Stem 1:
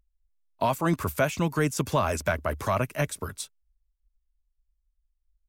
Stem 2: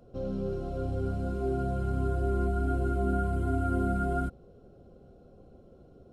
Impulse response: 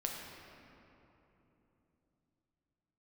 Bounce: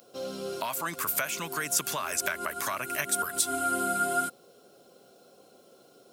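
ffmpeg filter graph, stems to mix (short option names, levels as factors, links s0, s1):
-filter_complex "[0:a]equalizer=f=1500:t=o:w=1.9:g=8.5,acompressor=threshold=0.0708:ratio=6,volume=0.282,asplit=2[s0][s1];[1:a]highpass=f=610:p=1,volume=1.33[s2];[s1]apad=whole_len=270114[s3];[s2][s3]sidechaincompress=threshold=0.002:ratio=4:attack=31:release=103[s4];[s0][s4]amix=inputs=2:normalize=0,highpass=150,crystalizer=i=9.5:c=0"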